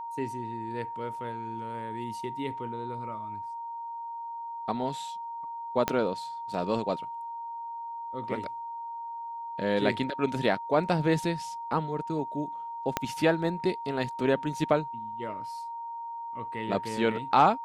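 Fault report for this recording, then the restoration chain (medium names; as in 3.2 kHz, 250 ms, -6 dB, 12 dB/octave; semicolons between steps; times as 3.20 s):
whine 930 Hz -35 dBFS
5.88 s: pop -10 dBFS
12.97 s: pop -10 dBFS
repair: de-click; band-stop 930 Hz, Q 30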